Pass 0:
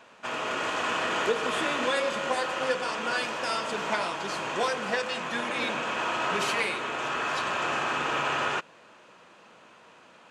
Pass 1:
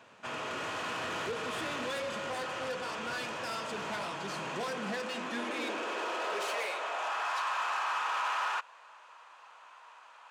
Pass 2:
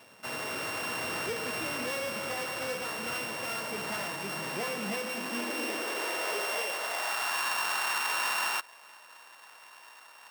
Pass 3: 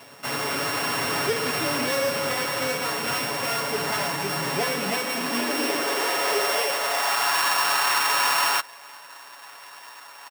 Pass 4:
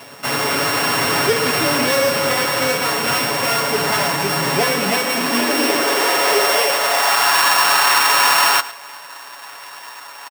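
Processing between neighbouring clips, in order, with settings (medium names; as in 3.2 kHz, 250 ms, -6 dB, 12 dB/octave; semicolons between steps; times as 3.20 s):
saturation -28.5 dBFS, distortion -10 dB; high-pass sweep 100 Hz -> 950 Hz, 3.85–7.46 s; trim -4 dB
sorted samples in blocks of 16 samples; trim +2 dB
comb 7.1 ms, depth 66%; trim +8 dB
delay 109 ms -17 dB; trim +8 dB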